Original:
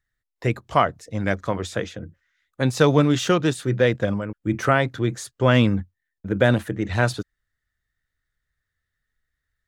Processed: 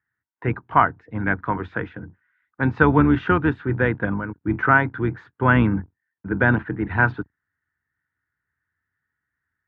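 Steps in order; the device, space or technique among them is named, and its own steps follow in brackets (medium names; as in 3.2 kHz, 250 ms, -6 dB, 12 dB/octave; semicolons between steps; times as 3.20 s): sub-octave bass pedal (octave divider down 2 oct, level -2 dB; cabinet simulation 80–2300 Hz, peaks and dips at 290 Hz +4 dB, 570 Hz -10 dB, 930 Hz +9 dB, 1.5 kHz +9 dB); trim -1 dB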